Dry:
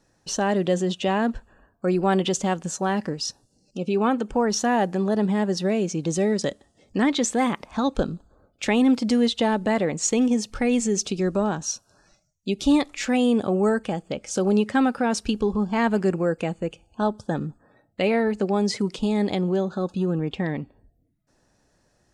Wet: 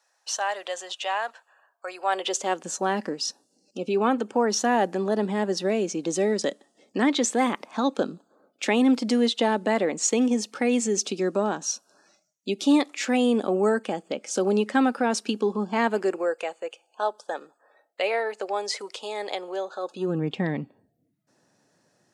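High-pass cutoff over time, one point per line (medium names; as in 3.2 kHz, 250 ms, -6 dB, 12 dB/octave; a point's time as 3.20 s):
high-pass 24 dB/octave
1.97 s 690 Hz
2.72 s 230 Hz
15.78 s 230 Hz
16.41 s 490 Hz
19.82 s 490 Hz
20.24 s 130 Hz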